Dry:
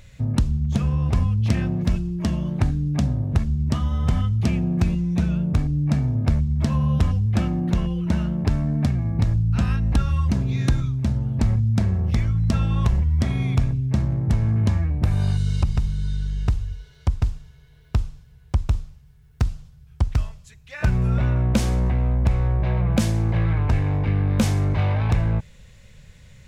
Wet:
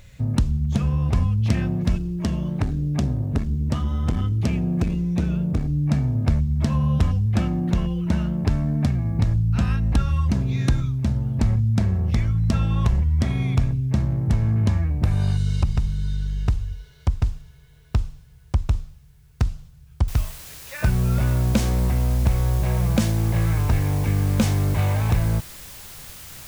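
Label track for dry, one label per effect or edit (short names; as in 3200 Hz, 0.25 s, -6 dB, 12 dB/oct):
1.970000	5.690000	core saturation saturates under 200 Hz
20.080000	20.080000	noise floor step -69 dB -41 dB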